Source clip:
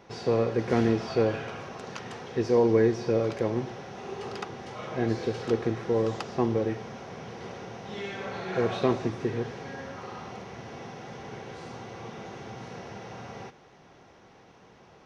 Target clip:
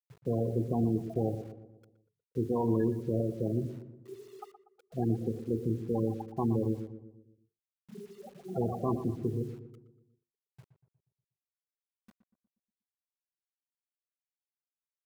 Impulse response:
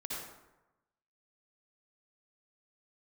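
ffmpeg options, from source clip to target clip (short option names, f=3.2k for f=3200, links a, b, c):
-filter_complex "[0:a]lowpass=f=2.1k:p=1,afftfilt=real='re*gte(hypot(re,im),0.1)':imag='im*gte(hypot(re,im),0.1)':win_size=1024:overlap=0.75,lowshelf=f=77:g=-6,bandreject=f=50:t=h:w=6,bandreject=f=100:t=h:w=6,bandreject=f=150:t=h:w=6,bandreject=f=200:t=h:w=6,bandreject=f=250:t=h:w=6,bandreject=f=300:t=h:w=6,bandreject=f=350:t=h:w=6,bandreject=f=400:t=h:w=6,bandreject=f=450:t=h:w=6,aecho=1:1:1:0.57,alimiter=limit=-20dB:level=0:latency=1:release=28,acrusher=bits=9:mix=0:aa=0.000001,asplit=2[a][b];[b]adelay=120,lowpass=f=1.1k:p=1,volume=-10dB,asplit=2[c][d];[d]adelay=120,lowpass=f=1.1k:p=1,volume=0.53,asplit=2[e][f];[f]adelay=120,lowpass=f=1.1k:p=1,volume=0.53,asplit=2[g][h];[h]adelay=120,lowpass=f=1.1k:p=1,volume=0.53,asplit=2[i][j];[j]adelay=120,lowpass=f=1.1k:p=1,volume=0.53,asplit=2[k][l];[l]adelay=120,lowpass=f=1.1k:p=1,volume=0.53[m];[a][c][e][g][i][k][m]amix=inputs=7:normalize=0"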